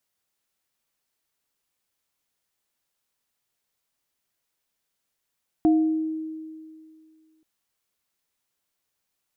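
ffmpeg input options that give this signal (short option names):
-f lavfi -i "aevalsrc='0.2*pow(10,-3*t/2.23)*sin(2*PI*316*t)+0.0562*pow(10,-3*t/0.61)*sin(2*PI*705*t)':d=1.78:s=44100"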